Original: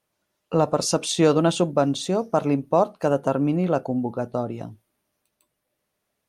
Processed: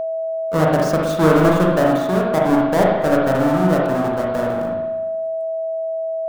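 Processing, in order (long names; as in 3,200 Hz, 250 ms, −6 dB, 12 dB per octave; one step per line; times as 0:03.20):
each half-wave held at its own peak
high shelf with overshoot 1,800 Hz −7.5 dB, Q 1.5
spring reverb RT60 1.1 s, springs 38/59 ms, chirp 65 ms, DRR −2.5 dB
steady tone 650 Hz −17 dBFS
level −3.5 dB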